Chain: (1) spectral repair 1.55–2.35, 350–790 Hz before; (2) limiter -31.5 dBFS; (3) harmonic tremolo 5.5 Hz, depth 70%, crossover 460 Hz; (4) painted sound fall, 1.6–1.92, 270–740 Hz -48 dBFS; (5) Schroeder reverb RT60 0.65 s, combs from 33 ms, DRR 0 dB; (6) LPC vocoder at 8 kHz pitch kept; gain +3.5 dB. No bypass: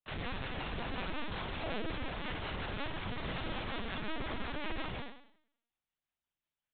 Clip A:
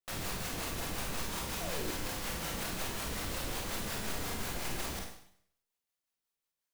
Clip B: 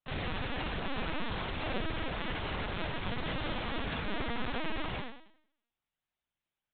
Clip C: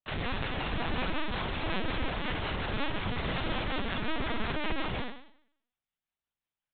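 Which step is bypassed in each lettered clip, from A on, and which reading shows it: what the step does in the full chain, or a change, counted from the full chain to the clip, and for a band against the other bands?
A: 6, 4 kHz band +3.0 dB; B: 3, loudness change +3.0 LU; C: 2, mean gain reduction 6.0 dB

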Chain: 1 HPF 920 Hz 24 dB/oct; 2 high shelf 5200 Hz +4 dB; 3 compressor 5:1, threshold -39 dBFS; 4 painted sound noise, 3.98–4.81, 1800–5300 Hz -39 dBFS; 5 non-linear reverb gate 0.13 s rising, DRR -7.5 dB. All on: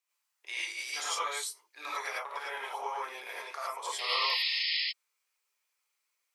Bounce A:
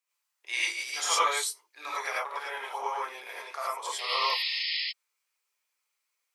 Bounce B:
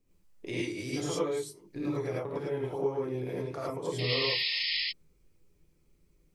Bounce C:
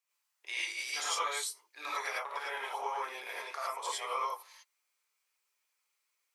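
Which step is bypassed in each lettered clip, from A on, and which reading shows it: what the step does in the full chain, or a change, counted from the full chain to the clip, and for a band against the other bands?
3, mean gain reduction 3.0 dB; 1, 500 Hz band +17.0 dB; 4, 4 kHz band -8.5 dB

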